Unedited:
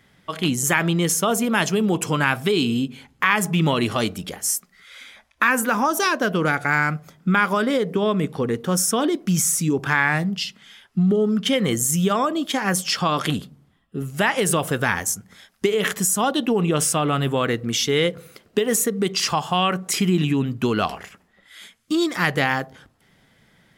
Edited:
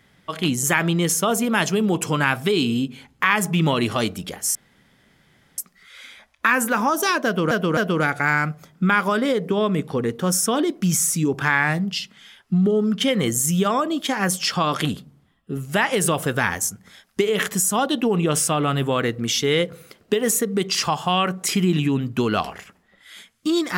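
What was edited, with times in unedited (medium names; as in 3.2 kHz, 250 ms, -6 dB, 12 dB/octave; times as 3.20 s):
4.55 s: insert room tone 1.03 s
6.22–6.48 s: loop, 3 plays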